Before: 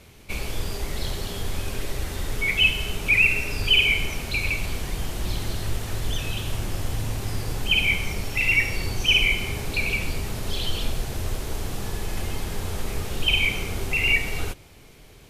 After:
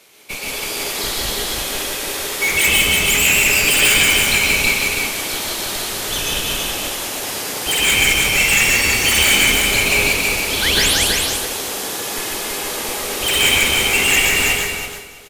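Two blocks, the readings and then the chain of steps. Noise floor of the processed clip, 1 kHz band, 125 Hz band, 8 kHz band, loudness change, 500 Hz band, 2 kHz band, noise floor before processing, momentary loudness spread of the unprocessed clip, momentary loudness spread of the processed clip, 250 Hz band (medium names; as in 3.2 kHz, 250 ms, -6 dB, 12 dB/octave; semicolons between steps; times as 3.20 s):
-28 dBFS, +12.5 dB, -1.5 dB, +20.0 dB, +9.5 dB, +10.0 dB, +8.5 dB, -48 dBFS, 13 LU, 11 LU, +7.0 dB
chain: high-pass 380 Hz 12 dB/octave; treble shelf 3.2 kHz +7 dB; in parallel at -10 dB: Schmitt trigger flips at -21.5 dBFS; on the sum: flange 0.19 Hz, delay 6.1 ms, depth 7.1 ms, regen -87%; sine folder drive 16 dB, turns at -7 dBFS; painted sound rise, 10.62–10.94 s, 1.4–12 kHz -13 dBFS; on a send: feedback delay 327 ms, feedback 28%, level -3 dB; on the sum: plate-style reverb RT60 0.69 s, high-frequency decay 0.75×, pre-delay 115 ms, DRR -1 dB; upward expansion 1.5:1, over -22 dBFS; trim -6.5 dB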